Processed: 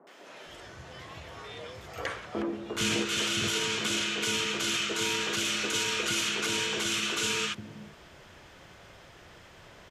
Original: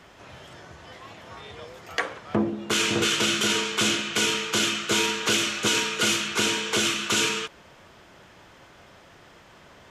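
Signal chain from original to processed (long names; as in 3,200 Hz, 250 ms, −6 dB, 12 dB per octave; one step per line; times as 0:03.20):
low-shelf EQ 62 Hz +6 dB
brickwall limiter −19.5 dBFS, peak gain reduction 9.5 dB
three-band delay without the direct sound mids, highs, lows 70/460 ms, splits 240/970 Hz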